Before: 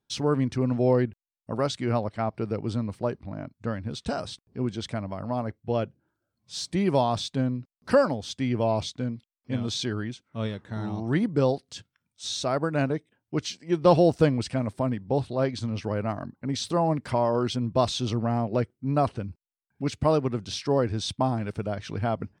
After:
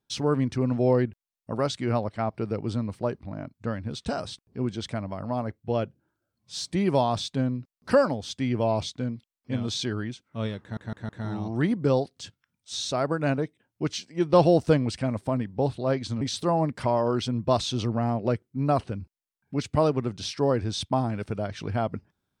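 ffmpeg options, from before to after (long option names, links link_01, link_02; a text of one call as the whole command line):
ffmpeg -i in.wav -filter_complex "[0:a]asplit=5[link_01][link_02][link_03][link_04][link_05];[link_01]atrim=end=10.772[link_06];[link_02]atrim=start=10.608:end=10.772[link_07];[link_03]atrim=start=10.608:end=10.772[link_08];[link_04]atrim=start=10.608:end=15.732[link_09];[link_05]atrim=start=16.488[link_10];[link_06][link_07]acrossfade=duration=0.004:curve1=hsin:curve2=hsin[link_11];[link_11][link_08]acrossfade=duration=0.004:curve1=hsin:curve2=hsin[link_12];[link_12][link_09]acrossfade=duration=0.004:curve1=hsin:curve2=hsin[link_13];[link_13][link_10]acrossfade=duration=0.004:curve1=hsin:curve2=hsin" out.wav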